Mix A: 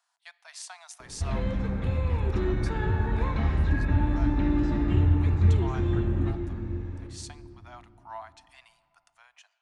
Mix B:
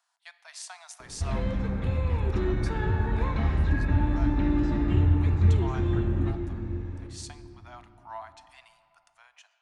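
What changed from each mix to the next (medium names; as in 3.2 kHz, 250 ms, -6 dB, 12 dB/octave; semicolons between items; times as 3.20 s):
speech: send +6.0 dB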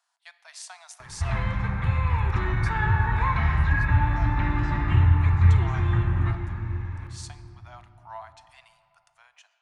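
background: add graphic EQ 125/250/500/1000/2000 Hz +9/-9/-8/+11/+9 dB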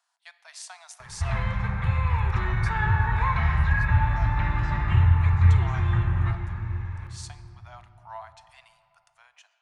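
background: add peaking EQ 290 Hz -13 dB 0.45 oct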